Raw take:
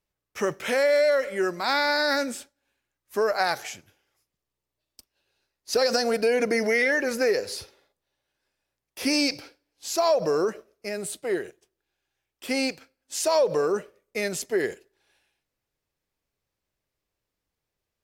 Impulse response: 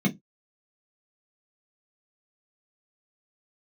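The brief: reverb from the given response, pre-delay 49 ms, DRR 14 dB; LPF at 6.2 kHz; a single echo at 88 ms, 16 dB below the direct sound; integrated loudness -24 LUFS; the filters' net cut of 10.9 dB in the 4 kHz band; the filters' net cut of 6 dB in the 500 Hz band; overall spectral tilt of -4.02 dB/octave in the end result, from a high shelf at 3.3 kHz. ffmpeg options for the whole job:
-filter_complex "[0:a]lowpass=6200,equalizer=f=500:t=o:g=-7,highshelf=f=3300:g=-7,equalizer=f=4000:t=o:g=-6.5,aecho=1:1:88:0.158,asplit=2[s0][s1];[1:a]atrim=start_sample=2205,adelay=49[s2];[s1][s2]afir=irnorm=-1:irlink=0,volume=0.0668[s3];[s0][s3]amix=inputs=2:normalize=0,volume=1.78"

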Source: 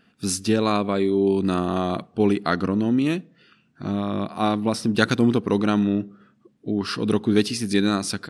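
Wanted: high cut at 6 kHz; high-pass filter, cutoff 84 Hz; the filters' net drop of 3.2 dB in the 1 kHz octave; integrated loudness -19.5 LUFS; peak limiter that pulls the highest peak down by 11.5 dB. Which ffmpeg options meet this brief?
-af "highpass=84,lowpass=6000,equalizer=f=1000:t=o:g=-4.5,volume=2.24,alimiter=limit=0.376:level=0:latency=1"

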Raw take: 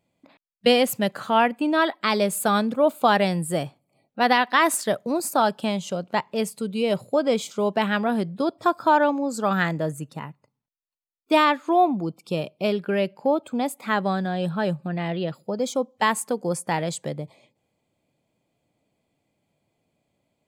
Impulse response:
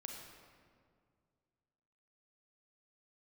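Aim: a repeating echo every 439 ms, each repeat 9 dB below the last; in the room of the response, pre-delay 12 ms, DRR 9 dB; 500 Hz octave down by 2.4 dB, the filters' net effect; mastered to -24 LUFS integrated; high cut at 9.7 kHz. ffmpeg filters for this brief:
-filter_complex "[0:a]lowpass=9700,equalizer=f=500:t=o:g=-3,aecho=1:1:439|878|1317|1756:0.355|0.124|0.0435|0.0152,asplit=2[s0][s1];[1:a]atrim=start_sample=2205,adelay=12[s2];[s1][s2]afir=irnorm=-1:irlink=0,volume=0.531[s3];[s0][s3]amix=inputs=2:normalize=0,volume=0.944"

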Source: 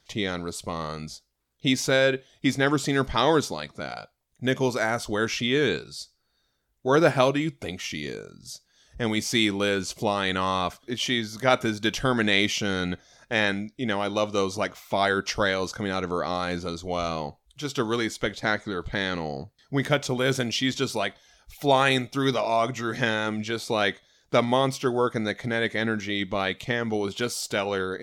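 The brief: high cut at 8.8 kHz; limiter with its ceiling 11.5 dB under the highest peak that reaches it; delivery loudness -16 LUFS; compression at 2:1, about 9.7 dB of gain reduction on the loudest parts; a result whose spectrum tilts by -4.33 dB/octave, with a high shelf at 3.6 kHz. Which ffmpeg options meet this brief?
-af "lowpass=8800,highshelf=f=3600:g=-3.5,acompressor=threshold=0.0224:ratio=2,volume=13.3,alimiter=limit=0.562:level=0:latency=1"

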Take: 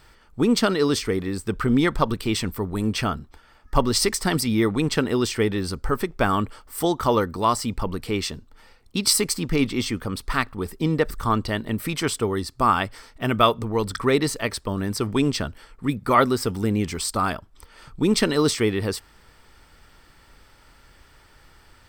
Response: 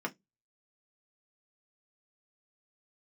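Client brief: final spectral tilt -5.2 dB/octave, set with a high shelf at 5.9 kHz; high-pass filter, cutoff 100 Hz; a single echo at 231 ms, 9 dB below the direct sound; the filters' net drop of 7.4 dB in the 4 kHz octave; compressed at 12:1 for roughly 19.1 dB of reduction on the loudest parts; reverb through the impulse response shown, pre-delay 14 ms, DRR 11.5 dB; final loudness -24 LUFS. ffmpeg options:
-filter_complex "[0:a]highpass=100,equalizer=f=4000:t=o:g=-6.5,highshelf=f=5900:g=-7.5,acompressor=threshold=0.0224:ratio=12,aecho=1:1:231:0.355,asplit=2[s0][s1];[1:a]atrim=start_sample=2205,adelay=14[s2];[s1][s2]afir=irnorm=-1:irlink=0,volume=0.158[s3];[s0][s3]amix=inputs=2:normalize=0,volume=4.73"

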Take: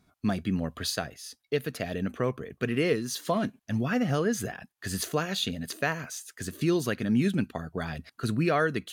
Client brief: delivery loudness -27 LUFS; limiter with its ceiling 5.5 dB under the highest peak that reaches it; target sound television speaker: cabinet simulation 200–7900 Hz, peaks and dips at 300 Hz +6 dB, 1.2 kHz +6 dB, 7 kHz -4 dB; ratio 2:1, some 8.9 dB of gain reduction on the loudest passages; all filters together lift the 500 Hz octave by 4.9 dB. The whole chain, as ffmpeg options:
-af "equalizer=f=500:t=o:g=5,acompressor=threshold=0.0178:ratio=2,alimiter=level_in=1.06:limit=0.0631:level=0:latency=1,volume=0.944,highpass=f=200:w=0.5412,highpass=f=200:w=1.3066,equalizer=f=300:t=q:w=4:g=6,equalizer=f=1200:t=q:w=4:g=6,equalizer=f=7000:t=q:w=4:g=-4,lowpass=f=7900:w=0.5412,lowpass=f=7900:w=1.3066,volume=2.82"

